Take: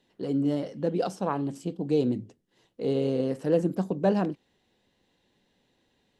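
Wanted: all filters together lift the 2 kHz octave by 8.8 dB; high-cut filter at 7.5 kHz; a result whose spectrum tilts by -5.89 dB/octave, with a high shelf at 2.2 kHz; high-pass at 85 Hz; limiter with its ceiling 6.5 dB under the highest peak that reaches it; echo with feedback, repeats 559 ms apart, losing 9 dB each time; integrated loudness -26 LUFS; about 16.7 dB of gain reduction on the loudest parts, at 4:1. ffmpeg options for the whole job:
-af "highpass=85,lowpass=7500,equalizer=f=2000:t=o:g=8,highshelf=f=2200:g=7,acompressor=threshold=0.0112:ratio=4,alimiter=level_in=2.66:limit=0.0631:level=0:latency=1,volume=0.376,aecho=1:1:559|1118|1677|2236:0.355|0.124|0.0435|0.0152,volume=7.5"

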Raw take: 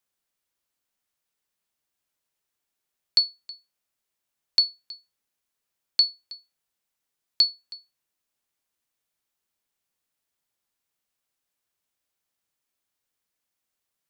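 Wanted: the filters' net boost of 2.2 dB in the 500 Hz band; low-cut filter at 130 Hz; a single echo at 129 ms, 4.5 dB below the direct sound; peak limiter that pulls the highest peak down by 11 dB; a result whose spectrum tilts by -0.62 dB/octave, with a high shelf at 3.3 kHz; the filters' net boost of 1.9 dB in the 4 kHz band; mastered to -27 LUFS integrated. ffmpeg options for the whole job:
-af "highpass=130,equalizer=f=500:t=o:g=3,highshelf=f=3300:g=-8.5,equalizer=f=4000:t=o:g=8,alimiter=limit=0.126:level=0:latency=1,aecho=1:1:129:0.596,volume=1.06"

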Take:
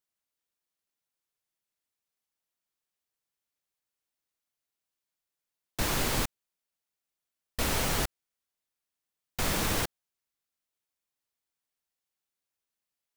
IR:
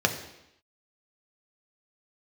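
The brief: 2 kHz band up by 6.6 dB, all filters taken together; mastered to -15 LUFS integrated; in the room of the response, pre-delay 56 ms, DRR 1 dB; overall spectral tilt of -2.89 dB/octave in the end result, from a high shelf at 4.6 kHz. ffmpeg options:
-filter_complex "[0:a]equalizer=f=2000:t=o:g=7.5,highshelf=f=4600:g=3.5,asplit=2[s0][s1];[1:a]atrim=start_sample=2205,adelay=56[s2];[s1][s2]afir=irnorm=-1:irlink=0,volume=0.2[s3];[s0][s3]amix=inputs=2:normalize=0,volume=3.16"

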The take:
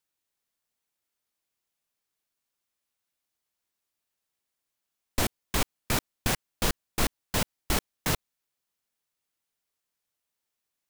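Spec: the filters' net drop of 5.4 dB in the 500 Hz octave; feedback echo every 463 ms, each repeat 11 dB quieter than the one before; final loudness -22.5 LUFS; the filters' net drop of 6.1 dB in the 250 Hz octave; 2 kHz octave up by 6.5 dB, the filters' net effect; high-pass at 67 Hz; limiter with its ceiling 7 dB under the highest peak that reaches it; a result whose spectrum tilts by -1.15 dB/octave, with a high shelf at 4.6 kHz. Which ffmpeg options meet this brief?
-af "highpass=67,equalizer=f=250:t=o:g=-7,equalizer=f=500:t=o:g=-5.5,equalizer=f=2000:t=o:g=7,highshelf=f=4600:g=7.5,alimiter=limit=0.168:level=0:latency=1,aecho=1:1:463|926|1389:0.282|0.0789|0.0221,volume=2.11"

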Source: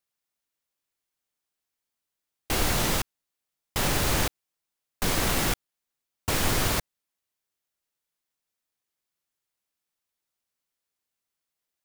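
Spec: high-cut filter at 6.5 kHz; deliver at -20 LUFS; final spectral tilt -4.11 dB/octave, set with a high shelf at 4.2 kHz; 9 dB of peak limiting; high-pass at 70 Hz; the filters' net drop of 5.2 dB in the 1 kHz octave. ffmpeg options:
-af "highpass=70,lowpass=6500,equalizer=f=1000:t=o:g=-6.5,highshelf=f=4200:g=-6,volume=5.62,alimiter=limit=0.335:level=0:latency=1"

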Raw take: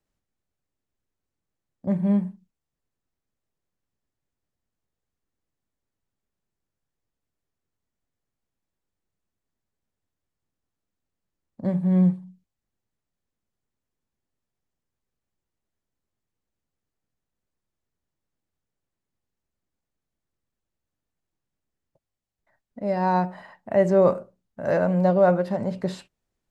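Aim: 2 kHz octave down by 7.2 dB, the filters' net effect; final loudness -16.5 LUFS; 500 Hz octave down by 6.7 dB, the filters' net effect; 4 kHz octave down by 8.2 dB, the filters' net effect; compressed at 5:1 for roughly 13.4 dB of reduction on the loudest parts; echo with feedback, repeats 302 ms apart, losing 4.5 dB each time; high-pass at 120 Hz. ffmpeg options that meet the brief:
-af "highpass=120,equalizer=f=500:t=o:g=-7.5,equalizer=f=2000:t=o:g=-8.5,equalizer=f=4000:t=o:g=-7.5,acompressor=threshold=0.0224:ratio=5,aecho=1:1:302|604|906|1208|1510|1812|2114|2416|2718:0.596|0.357|0.214|0.129|0.0772|0.0463|0.0278|0.0167|0.01,volume=10.6"

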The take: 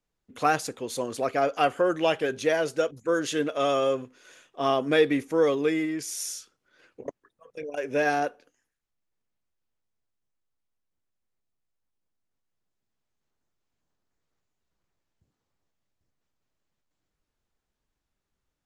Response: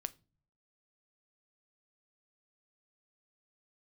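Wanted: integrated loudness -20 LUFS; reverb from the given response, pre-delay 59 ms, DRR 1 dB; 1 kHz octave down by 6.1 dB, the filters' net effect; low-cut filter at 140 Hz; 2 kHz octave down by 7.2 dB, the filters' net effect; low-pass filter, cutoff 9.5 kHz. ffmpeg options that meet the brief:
-filter_complex "[0:a]highpass=140,lowpass=9500,equalizer=f=1000:t=o:g=-8.5,equalizer=f=2000:t=o:g=-6.5,asplit=2[s0][s1];[1:a]atrim=start_sample=2205,adelay=59[s2];[s1][s2]afir=irnorm=-1:irlink=0,volume=1.12[s3];[s0][s3]amix=inputs=2:normalize=0,volume=2.11"

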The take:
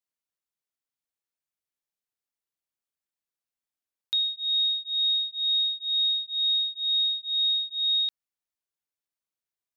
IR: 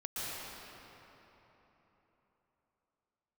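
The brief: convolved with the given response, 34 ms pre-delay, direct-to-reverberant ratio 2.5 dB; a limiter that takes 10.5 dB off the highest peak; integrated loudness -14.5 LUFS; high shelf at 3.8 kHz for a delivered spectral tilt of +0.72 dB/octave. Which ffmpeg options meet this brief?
-filter_complex "[0:a]highshelf=f=3800:g=5.5,alimiter=level_in=1.58:limit=0.0631:level=0:latency=1,volume=0.631,asplit=2[s0][s1];[1:a]atrim=start_sample=2205,adelay=34[s2];[s1][s2]afir=irnorm=-1:irlink=0,volume=0.473[s3];[s0][s3]amix=inputs=2:normalize=0,volume=4.22"

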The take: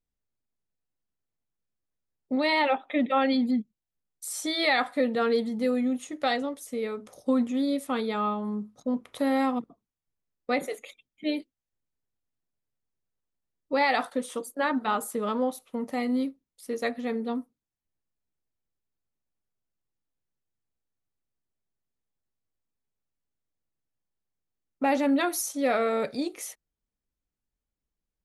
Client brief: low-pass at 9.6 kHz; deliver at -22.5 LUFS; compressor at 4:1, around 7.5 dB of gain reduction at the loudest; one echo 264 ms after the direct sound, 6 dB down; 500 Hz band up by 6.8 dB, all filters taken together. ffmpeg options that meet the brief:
-af "lowpass=9600,equalizer=f=500:t=o:g=7.5,acompressor=threshold=0.0631:ratio=4,aecho=1:1:264:0.501,volume=2"

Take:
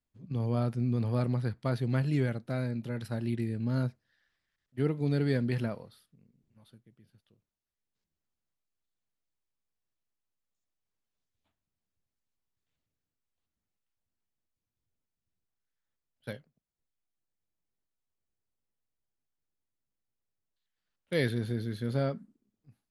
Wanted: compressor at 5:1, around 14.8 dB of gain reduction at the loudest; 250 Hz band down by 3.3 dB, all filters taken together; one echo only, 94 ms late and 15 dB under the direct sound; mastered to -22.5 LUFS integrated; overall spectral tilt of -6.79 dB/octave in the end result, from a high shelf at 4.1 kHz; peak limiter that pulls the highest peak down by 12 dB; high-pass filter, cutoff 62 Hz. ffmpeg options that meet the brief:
-af "highpass=62,equalizer=f=250:t=o:g=-4,highshelf=f=4100:g=4.5,acompressor=threshold=0.00708:ratio=5,alimiter=level_in=6.31:limit=0.0631:level=0:latency=1,volume=0.158,aecho=1:1:94:0.178,volume=23.7"

